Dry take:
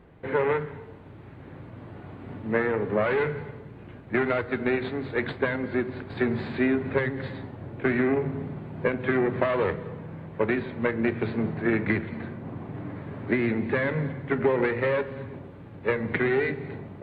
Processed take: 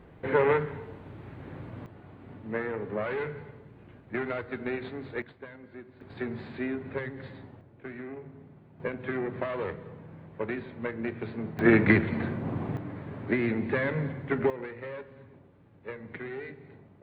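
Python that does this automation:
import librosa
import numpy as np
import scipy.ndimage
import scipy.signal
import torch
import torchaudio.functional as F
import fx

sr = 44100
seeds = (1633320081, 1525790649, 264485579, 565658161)

y = fx.gain(x, sr, db=fx.steps((0.0, 1.0), (1.86, -7.5), (5.22, -19.0), (6.01, -9.0), (7.61, -17.0), (8.8, -8.0), (11.59, 4.5), (12.77, -2.5), (14.5, -14.5)))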